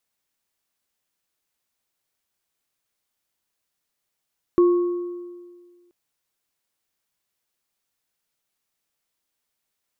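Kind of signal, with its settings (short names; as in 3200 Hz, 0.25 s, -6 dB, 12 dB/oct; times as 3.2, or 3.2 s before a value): sine partials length 1.33 s, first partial 351 Hz, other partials 1100 Hz, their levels -15 dB, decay 1.74 s, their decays 1.24 s, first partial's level -11 dB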